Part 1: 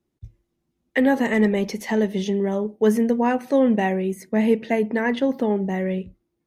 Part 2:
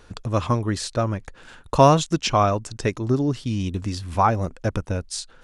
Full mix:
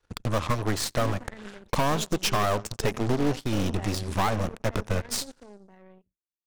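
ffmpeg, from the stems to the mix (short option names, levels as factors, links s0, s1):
-filter_complex "[0:a]highshelf=f=2100:g=-7,asoftclip=type=tanh:threshold=0.126,volume=0.158[s0];[1:a]acompressor=threshold=0.1:ratio=6,volume=0.944,asplit=2[s1][s2];[s2]volume=0.0944,aecho=0:1:87|174|261|348|435|522|609:1|0.5|0.25|0.125|0.0625|0.0312|0.0156[s3];[s0][s1][s3]amix=inputs=3:normalize=0,adynamicequalizer=threshold=0.0141:dfrequency=240:dqfactor=2.1:tfrequency=240:tqfactor=2.1:attack=5:release=100:ratio=0.375:range=1.5:mode=cutabove:tftype=bell,aeval=exprs='0.0794*(cos(1*acos(clip(val(0)/0.0794,-1,1)))-cos(1*PI/2))+0.0355*(cos(2*acos(clip(val(0)/0.0794,-1,1)))-cos(2*PI/2))+0.00501*(cos(5*acos(clip(val(0)/0.0794,-1,1)))-cos(5*PI/2))+0.0141*(cos(7*acos(clip(val(0)/0.0794,-1,1)))-cos(7*PI/2))':c=same"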